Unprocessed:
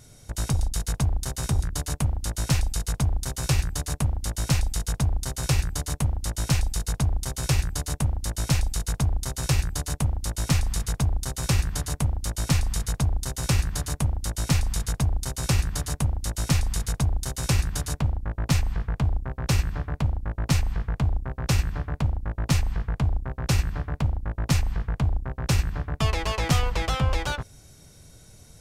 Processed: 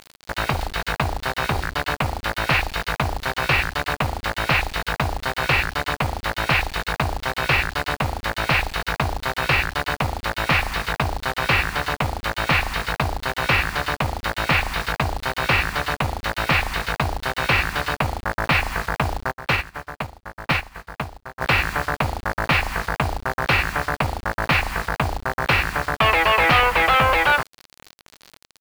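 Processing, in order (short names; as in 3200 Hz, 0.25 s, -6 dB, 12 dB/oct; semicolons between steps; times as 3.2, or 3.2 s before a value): overdrive pedal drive 18 dB, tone 1800 Hz, clips at -11.5 dBFS; EQ curve 150 Hz 0 dB, 2600 Hz +12 dB, 7400 Hz -16 dB; bit-crush 6-bit; bell 4400 Hz +6.5 dB 0.38 oct; 19.31–21.41 upward expander 2.5:1, over -43 dBFS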